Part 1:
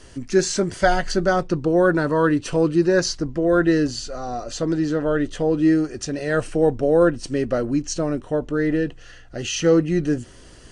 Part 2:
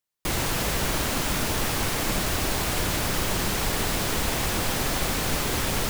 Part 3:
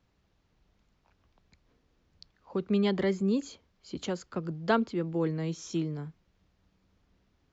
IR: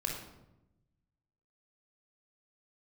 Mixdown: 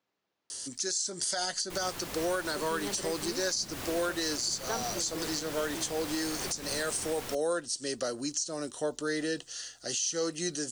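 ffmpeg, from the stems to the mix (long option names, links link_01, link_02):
-filter_complex "[0:a]highpass=frequency=580:poles=1,aexciter=amount=11.4:drive=1.1:freq=3600,adelay=500,volume=-4.5dB[link_01];[1:a]adelay=1450,volume=-10.5dB[link_02];[2:a]highpass=340,volume=-6dB[link_03];[link_01][link_02]amix=inputs=2:normalize=0,acrossover=split=95|430[link_04][link_05][link_06];[link_04]acompressor=threshold=-50dB:ratio=4[link_07];[link_05]acompressor=threshold=-34dB:ratio=4[link_08];[link_06]acompressor=threshold=-18dB:ratio=4[link_09];[link_07][link_08][link_09]amix=inputs=3:normalize=0,alimiter=limit=-16dB:level=0:latency=1:release=115,volume=0dB[link_10];[link_03][link_10]amix=inputs=2:normalize=0,alimiter=limit=-21.5dB:level=0:latency=1:release=293"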